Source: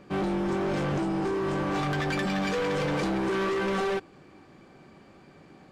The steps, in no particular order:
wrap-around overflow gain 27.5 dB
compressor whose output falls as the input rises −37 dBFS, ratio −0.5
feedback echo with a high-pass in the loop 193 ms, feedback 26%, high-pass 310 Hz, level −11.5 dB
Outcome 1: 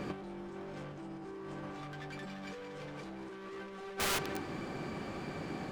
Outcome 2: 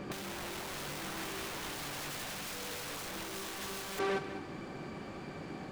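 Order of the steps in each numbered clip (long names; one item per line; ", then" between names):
feedback echo with a high-pass in the loop, then compressor whose output falls as the input rises, then wrap-around overflow
feedback echo with a high-pass in the loop, then wrap-around overflow, then compressor whose output falls as the input rises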